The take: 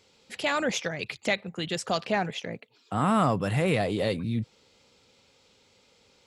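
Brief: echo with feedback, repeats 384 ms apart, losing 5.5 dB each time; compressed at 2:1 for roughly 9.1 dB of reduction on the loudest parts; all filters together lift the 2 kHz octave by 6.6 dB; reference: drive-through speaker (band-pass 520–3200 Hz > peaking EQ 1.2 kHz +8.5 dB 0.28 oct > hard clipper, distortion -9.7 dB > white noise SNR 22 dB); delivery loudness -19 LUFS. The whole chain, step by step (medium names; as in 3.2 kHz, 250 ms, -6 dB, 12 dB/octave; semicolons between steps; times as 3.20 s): peaking EQ 2 kHz +8 dB; compression 2:1, threshold -34 dBFS; band-pass 520–3200 Hz; peaking EQ 1.2 kHz +8.5 dB 0.28 oct; feedback delay 384 ms, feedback 53%, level -5.5 dB; hard clipper -29.5 dBFS; white noise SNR 22 dB; trim +16 dB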